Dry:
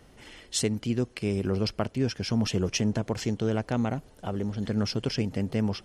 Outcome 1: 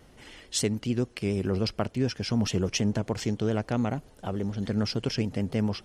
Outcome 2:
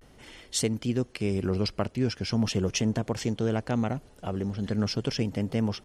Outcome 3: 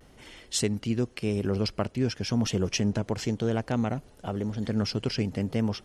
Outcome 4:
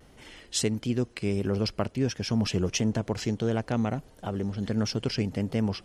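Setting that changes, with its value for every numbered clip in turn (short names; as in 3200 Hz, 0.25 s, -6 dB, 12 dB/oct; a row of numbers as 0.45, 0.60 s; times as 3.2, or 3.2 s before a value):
vibrato, rate: 6.9, 0.41, 0.93, 1.5 Hz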